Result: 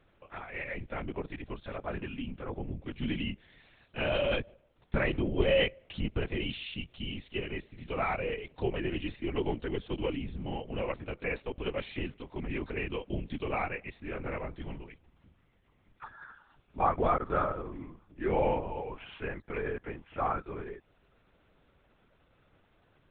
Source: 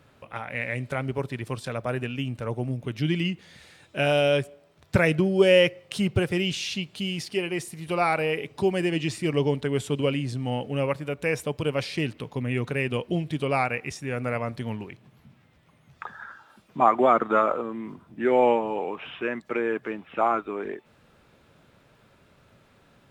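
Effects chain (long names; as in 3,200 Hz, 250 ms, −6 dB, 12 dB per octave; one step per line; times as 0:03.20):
linear-prediction vocoder at 8 kHz whisper
level −8 dB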